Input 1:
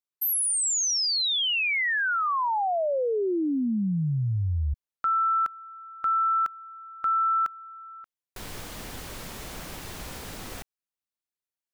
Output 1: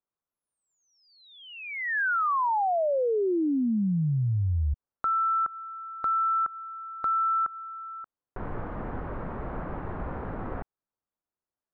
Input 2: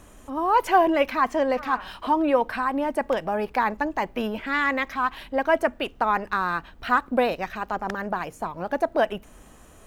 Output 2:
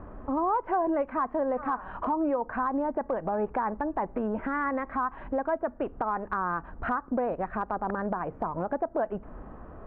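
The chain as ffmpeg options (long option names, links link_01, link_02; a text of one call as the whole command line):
ffmpeg -i in.wav -af "lowpass=frequency=1400:width=0.5412,lowpass=frequency=1400:width=1.3066,acompressor=threshold=-30dB:ratio=6:attack=1.6:release=240:knee=1:detection=rms,volume=6.5dB" out.wav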